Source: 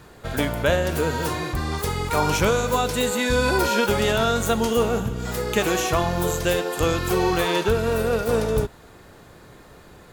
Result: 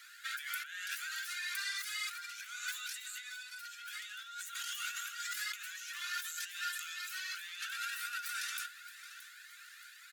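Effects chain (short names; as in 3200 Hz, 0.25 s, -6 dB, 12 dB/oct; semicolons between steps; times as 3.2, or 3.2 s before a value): Chebyshev high-pass 1400 Hz, order 6; negative-ratio compressor -38 dBFS, ratio -1; short-mantissa float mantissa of 6-bit; on a send: feedback echo 0.623 s, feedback 43%, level -15 dB; on the sum: cascading flanger rising 2 Hz; gain -1 dB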